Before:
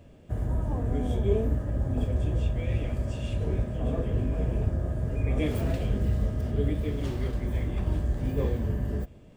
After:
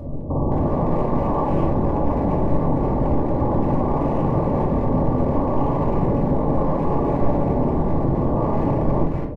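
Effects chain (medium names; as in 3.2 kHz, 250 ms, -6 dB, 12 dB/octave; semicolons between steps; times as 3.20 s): peak limiter -23.5 dBFS, peak gain reduction 11 dB; sine folder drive 12 dB, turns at -23.5 dBFS; brick-wall FIR low-pass 1.2 kHz; speakerphone echo 210 ms, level -6 dB; simulated room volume 800 m³, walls furnished, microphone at 2.4 m; trim +2 dB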